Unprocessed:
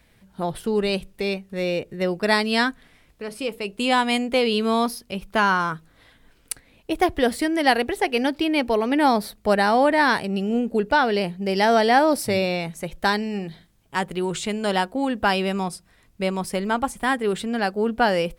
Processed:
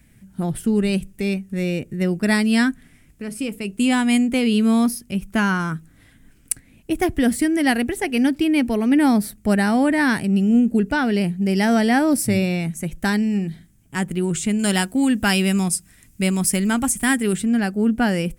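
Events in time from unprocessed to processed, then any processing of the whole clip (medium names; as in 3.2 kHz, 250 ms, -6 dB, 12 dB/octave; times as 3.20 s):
14.59–17.36 s: treble shelf 2.3 kHz +10 dB
whole clip: ten-band graphic EQ 125 Hz +4 dB, 250 Hz +5 dB, 500 Hz -9 dB, 1 kHz -10 dB, 4 kHz -11 dB, 8 kHz +5 dB; trim +4.5 dB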